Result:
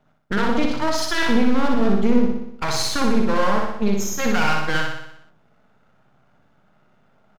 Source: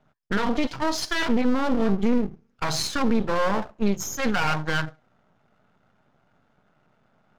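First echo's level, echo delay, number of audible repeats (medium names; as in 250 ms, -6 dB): -3.5 dB, 61 ms, 7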